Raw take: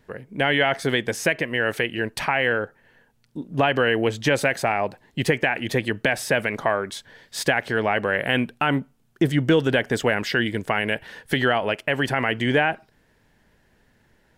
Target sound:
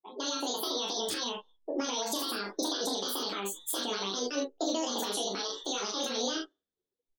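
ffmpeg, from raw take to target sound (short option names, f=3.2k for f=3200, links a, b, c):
-filter_complex "[0:a]flanger=delay=18.5:depth=3.3:speed=0.41,aecho=1:1:81:0.473,dynaudnorm=f=980:g=3:m=12dB,lowshelf=f=150:t=q:w=1.5:g=-6.5,acrossover=split=110|570|3900[a][b][c][d];[a]acompressor=threshold=-45dB:ratio=4[e];[b]acompressor=threshold=-28dB:ratio=4[f];[c]acompressor=threshold=-22dB:ratio=4[g];[d]acompressor=threshold=-25dB:ratio=4[h];[e][f][g][h]amix=inputs=4:normalize=0,asetrate=88200,aresample=44100,aecho=1:1:25|41:0.668|0.473,alimiter=limit=-15dB:level=0:latency=1:release=60,afftdn=nr=35:nf=-39,equalizer=f=250:t=o:w=1:g=9,equalizer=f=1k:t=o:w=1:g=-5,equalizer=f=2k:t=o:w=1:g=-11,volume=-5.5dB"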